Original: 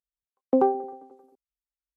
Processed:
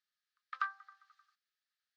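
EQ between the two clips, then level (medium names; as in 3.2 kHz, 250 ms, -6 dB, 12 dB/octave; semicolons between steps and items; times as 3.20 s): rippled Chebyshev high-pass 1.2 kHz, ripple 9 dB; distance through air 190 m; +18.0 dB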